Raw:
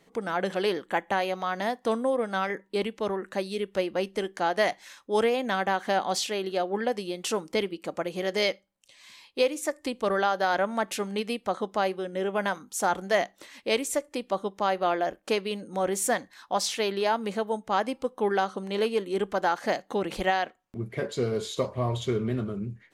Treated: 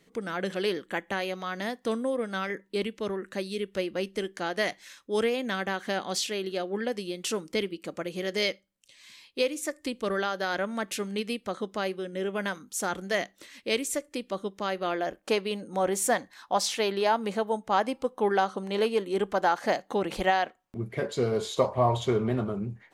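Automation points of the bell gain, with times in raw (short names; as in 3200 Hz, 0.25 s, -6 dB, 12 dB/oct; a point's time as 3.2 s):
bell 820 Hz 1 oct
14.82 s -9 dB
15.33 s +1.5 dB
21.03 s +1.5 dB
21.68 s +11 dB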